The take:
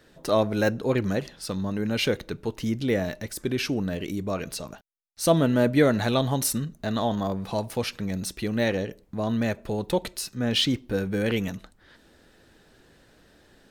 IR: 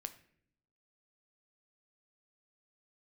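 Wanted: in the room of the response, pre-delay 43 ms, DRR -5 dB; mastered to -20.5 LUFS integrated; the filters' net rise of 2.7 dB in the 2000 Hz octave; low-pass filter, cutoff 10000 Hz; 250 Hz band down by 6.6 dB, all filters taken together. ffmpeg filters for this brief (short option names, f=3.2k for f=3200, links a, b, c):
-filter_complex "[0:a]lowpass=10k,equalizer=f=250:t=o:g=-8.5,equalizer=f=2k:t=o:g=3.5,asplit=2[a][b];[1:a]atrim=start_sample=2205,adelay=43[c];[b][c]afir=irnorm=-1:irlink=0,volume=8.5dB[d];[a][d]amix=inputs=2:normalize=0,volume=1.5dB"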